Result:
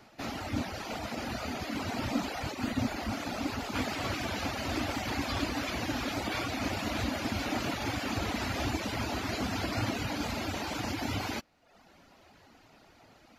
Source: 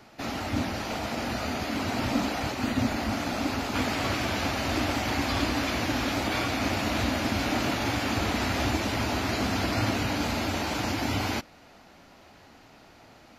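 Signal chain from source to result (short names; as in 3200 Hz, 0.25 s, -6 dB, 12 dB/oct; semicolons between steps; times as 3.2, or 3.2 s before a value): reverb removal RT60 0.75 s; gain -3.5 dB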